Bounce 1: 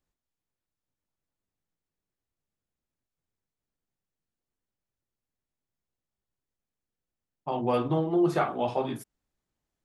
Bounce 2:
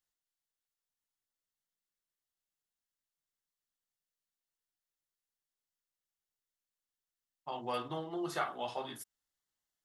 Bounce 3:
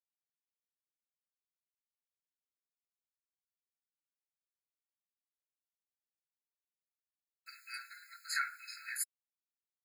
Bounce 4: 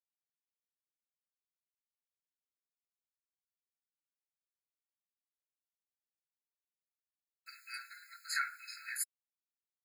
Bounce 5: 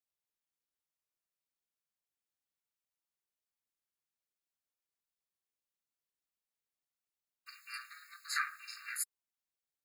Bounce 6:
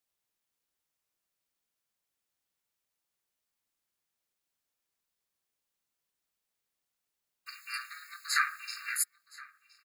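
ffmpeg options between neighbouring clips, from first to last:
ffmpeg -i in.wav -af "tiltshelf=frequency=840:gain=-9,bandreject=frequency=2400:width=5.9,volume=-8.5dB" out.wav
ffmpeg -i in.wav -af "acompressor=threshold=-40dB:ratio=16,acrusher=bits=11:mix=0:aa=0.000001,afftfilt=real='re*eq(mod(floor(b*sr/1024/1300),2),1)':imag='im*eq(mod(floor(b*sr/1024/1300),2),1)':win_size=1024:overlap=0.75,volume=15.5dB" out.wav
ffmpeg -i in.wav -af anull out.wav
ffmpeg -i in.wav -af "aeval=exprs='val(0)*sin(2*PI*180*n/s)':channel_layout=same,volume=3dB" out.wav
ffmpeg -i in.wav -af "aecho=1:1:1018:0.0841,volume=7dB" out.wav

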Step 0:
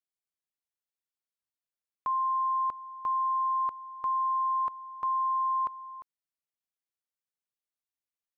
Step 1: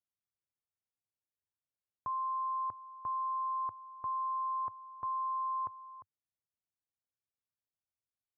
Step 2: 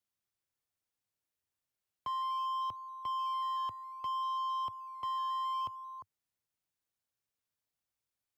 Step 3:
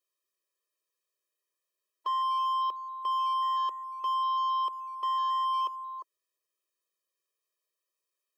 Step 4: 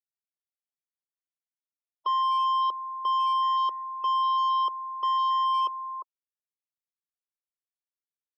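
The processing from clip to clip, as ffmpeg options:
ffmpeg -i in.wav -af "lowpass=1200,equalizer=frequency=100:width_type=o:width=1.1:gain=14.5,volume=-5dB" out.wav
ffmpeg -i in.wav -filter_complex "[0:a]asoftclip=type=tanh:threshold=-37dB,acrossover=split=200|510[link_01][link_02][link_03];[link_02]acrusher=samples=12:mix=1:aa=0.000001:lfo=1:lforange=7.2:lforate=0.62[link_04];[link_01][link_04][link_03]amix=inputs=3:normalize=0,volume=4.5dB" out.wav
ffmpeg -i in.wav -af "afftfilt=real='re*eq(mod(floor(b*sr/1024/330),2),1)':imag='im*eq(mod(floor(b*sr/1024/330),2),1)':win_size=1024:overlap=0.75,volume=6.5dB" out.wav
ffmpeg -i in.wav -af "afftfilt=real='re*gte(hypot(re,im),0.00282)':imag='im*gte(hypot(re,im),0.00282)':win_size=1024:overlap=0.75,asuperstop=centerf=1700:order=4:qfactor=4.9,volume=4dB" out.wav

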